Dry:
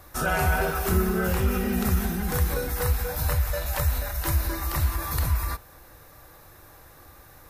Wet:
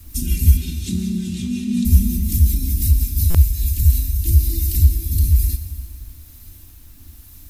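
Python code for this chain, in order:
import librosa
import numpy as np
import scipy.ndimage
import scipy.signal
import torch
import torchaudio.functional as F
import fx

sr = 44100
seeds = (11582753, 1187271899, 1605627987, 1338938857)

p1 = scipy.signal.sosfilt(scipy.signal.cheby2(4, 50, [480.0, 1400.0], 'bandstop', fs=sr, output='sos'), x)
p2 = fx.peak_eq(p1, sr, hz=2700.0, db=-11.0, octaves=2.3)
p3 = p2 + 0.75 * np.pad(p2, (int(3.3 * sr / 1000.0), 0))[:len(p2)]
p4 = fx.rider(p3, sr, range_db=4, speed_s=2.0)
p5 = p3 + (p4 * librosa.db_to_amplitude(1.0))
p6 = fx.quant_companded(p5, sr, bits=8)
p7 = fx.rotary_switch(p6, sr, hz=5.5, then_hz=1.1, switch_at_s=3.29)
p8 = fx.dmg_noise_colour(p7, sr, seeds[0], colour='white', level_db=-59.0)
p9 = fx.cabinet(p8, sr, low_hz=130.0, low_slope=24, high_hz=7800.0, hz=(450.0, 3700.0, 5300.0), db=(-7, 8, -3), at=(0.57, 1.85))
p10 = fx.rev_plate(p9, sr, seeds[1], rt60_s=2.9, hf_ratio=0.9, predelay_ms=0, drr_db=9.0)
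p11 = fx.buffer_glitch(p10, sr, at_s=(3.3,), block=256, repeats=7)
y = p11 * librosa.db_to_amplitude(3.0)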